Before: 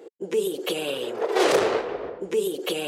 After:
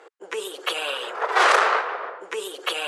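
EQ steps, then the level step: high-pass 760 Hz 12 dB/octave; low-pass 11 kHz 24 dB/octave; peaking EQ 1.3 kHz +13.5 dB 1.6 oct; 0.0 dB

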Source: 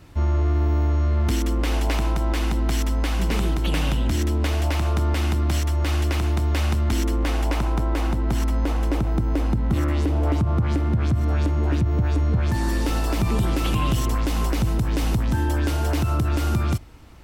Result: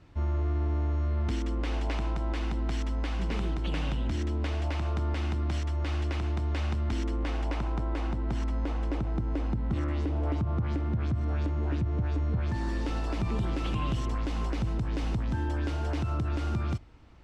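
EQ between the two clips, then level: distance through air 100 m; -8.0 dB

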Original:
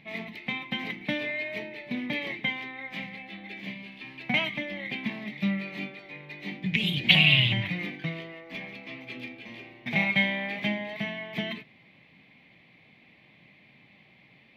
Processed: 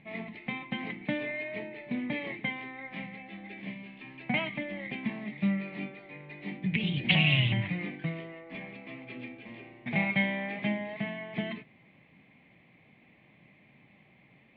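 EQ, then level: low-pass 6.3 kHz; distance through air 280 m; treble shelf 4.9 kHz -9.5 dB; 0.0 dB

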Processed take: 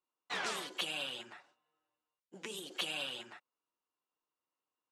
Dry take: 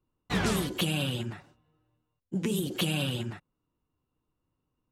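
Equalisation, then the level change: band-pass 660–7700 Hz; -4.5 dB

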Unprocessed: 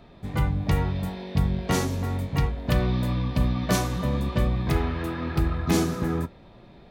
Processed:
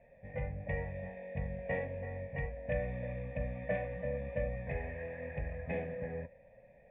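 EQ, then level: cascade formant filter e; band-stop 1 kHz, Q 23; static phaser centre 1.3 kHz, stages 6; +5.5 dB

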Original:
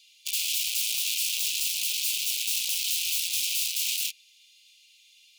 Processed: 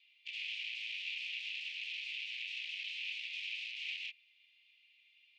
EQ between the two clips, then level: low-pass 1.9 kHz 24 dB/octave; tilt EQ +2 dB/octave; +4.5 dB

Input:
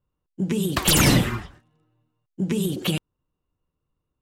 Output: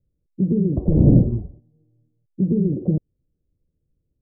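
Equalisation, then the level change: steep low-pass 590 Hz 36 dB/octave; bass shelf 280 Hz +8 dB; 0.0 dB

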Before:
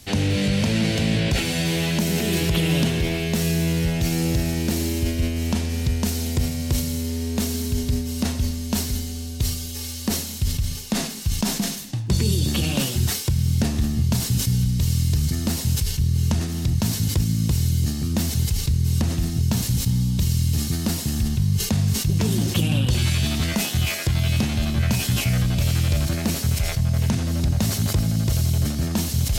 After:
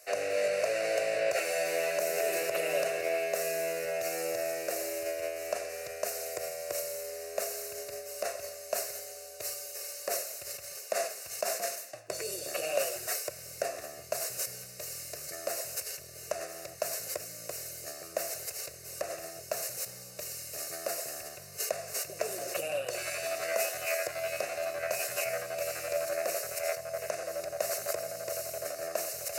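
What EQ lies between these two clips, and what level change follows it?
resonant high-pass 620 Hz, resonance Q 4.9; peaking EQ 2.7 kHz +8.5 dB 0.25 oct; static phaser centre 890 Hz, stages 6; -5.0 dB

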